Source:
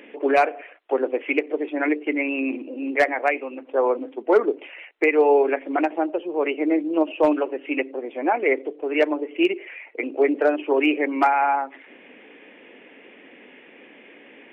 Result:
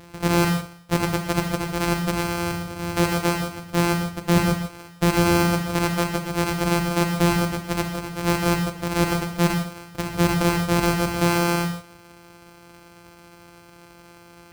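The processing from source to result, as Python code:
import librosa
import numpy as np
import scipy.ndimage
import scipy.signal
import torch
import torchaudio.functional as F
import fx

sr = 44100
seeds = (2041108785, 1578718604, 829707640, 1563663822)

y = np.r_[np.sort(x[:len(x) // 256 * 256].reshape(-1, 256), axis=1).ravel(), x[len(x) // 256 * 256:]]
y = fx.rev_gated(y, sr, seeds[0], gate_ms=190, shape='flat', drr_db=4.5)
y = np.clip(y, -10.0 ** (-12.5 / 20.0), 10.0 ** (-12.5 / 20.0))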